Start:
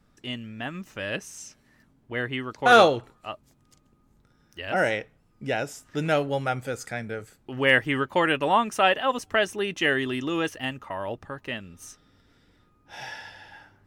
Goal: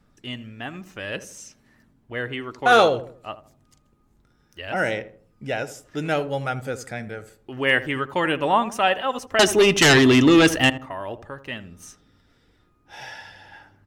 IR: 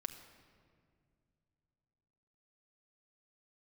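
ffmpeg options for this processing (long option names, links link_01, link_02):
-filter_complex "[0:a]aphaser=in_gain=1:out_gain=1:delay=2.9:decay=0.23:speed=0.59:type=sinusoidal,asettb=1/sr,asplit=3[link_01][link_02][link_03];[link_01]atrim=end=9.394[link_04];[link_02]atrim=start=9.39:end=10.7,asetpts=PTS-STARTPTS,afade=type=in:duration=0.004:curve=qsin,afade=type=out:start_time=1.306:duration=0.004:curve=qsin,aeval=exprs='0.316*sin(PI/2*3.55*val(0)/0.316)':channel_layout=same[link_05];[link_03]atrim=start=10.696[link_06];[link_04][link_05]acrossfade=duration=0.004:curve1=hsin:curve2=qsin[link_07];[link_07][link_06]acrossfade=duration=0.004:curve1=qsin:curve2=hsin,asplit=2[link_08][link_09];[link_09]adelay=80,lowpass=frequency=930:poles=1,volume=-12.5dB,asplit=2[link_10][link_11];[link_11]adelay=80,lowpass=frequency=930:poles=1,volume=0.42,asplit=2[link_12][link_13];[link_13]adelay=80,lowpass=frequency=930:poles=1,volume=0.42,asplit=2[link_14][link_15];[link_15]adelay=80,lowpass=frequency=930:poles=1,volume=0.42[link_16];[link_08][link_10][link_12][link_14][link_16]amix=inputs=5:normalize=0"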